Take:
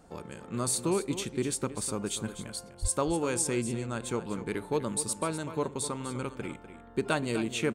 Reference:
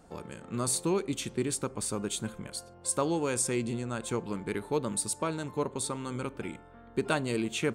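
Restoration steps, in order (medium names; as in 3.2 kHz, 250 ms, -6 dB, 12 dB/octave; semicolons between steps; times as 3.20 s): de-plosive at 2.81 s; inverse comb 248 ms -12 dB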